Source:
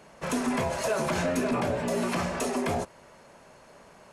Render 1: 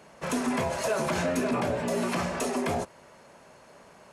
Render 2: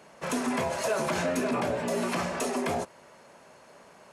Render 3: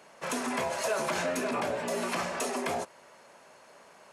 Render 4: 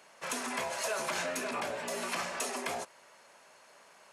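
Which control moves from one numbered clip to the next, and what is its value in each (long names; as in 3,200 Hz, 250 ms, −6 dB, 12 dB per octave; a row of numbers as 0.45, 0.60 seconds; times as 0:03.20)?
high-pass filter, corner frequency: 60, 170, 510, 1,400 Hertz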